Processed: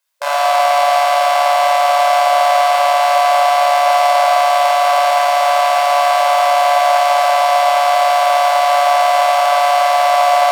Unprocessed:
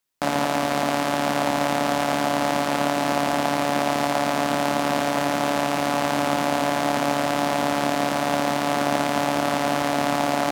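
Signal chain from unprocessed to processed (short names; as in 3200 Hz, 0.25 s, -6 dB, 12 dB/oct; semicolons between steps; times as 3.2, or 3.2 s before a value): in parallel at -1 dB: limiter -14.5 dBFS, peak gain reduction 8.5 dB; on the sum: brick-wall FIR high-pass 540 Hz; shoebox room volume 2300 m³, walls mixed, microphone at 5.1 m; gain -2.5 dB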